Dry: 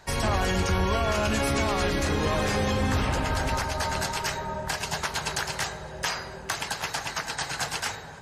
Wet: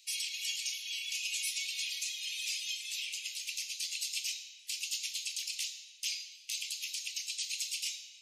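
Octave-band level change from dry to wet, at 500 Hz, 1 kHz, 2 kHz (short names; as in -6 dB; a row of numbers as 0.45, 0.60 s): under -40 dB, under -40 dB, -11.5 dB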